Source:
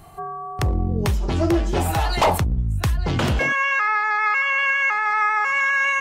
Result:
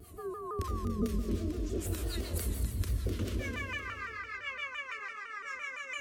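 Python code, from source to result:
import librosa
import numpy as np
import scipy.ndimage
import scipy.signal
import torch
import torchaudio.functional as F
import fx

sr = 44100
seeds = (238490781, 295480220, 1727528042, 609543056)

y = fx.over_compress(x, sr, threshold_db=-26.0, ratio=-1.0)
y = scipy.signal.sosfilt(scipy.signal.butter(2, 72.0, 'highpass', fs=sr, output='sos'), y)
y = fx.peak_eq(y, sr, hz=2100.0, db=-8.5, octaves=2.9)
y = fx.fixed_phaser(y, sr, hz=340.0, stages=4)
y = fx.rev_schroeder(y, sr, rt60_s=1.6, comb_ms=28, drr_db=1.5)
y = fx.harmonic_tremolo(y, sr, hz=6.8, depth_pct=70, crossover_hz=760.0)
y = fx.low_shelf(y, sr, hz=120.0, db=7.5)
y = fx.echo_feedback(y, sr, ms=254, feedback_pct=46, wet_db=-9.5)
y = fx.vibrato_shape(y, sr, shape='saw_down', rate_hz=5.9, depth_cents=160.0)
y = y * 10.0 ** (-3.0 / 20.0)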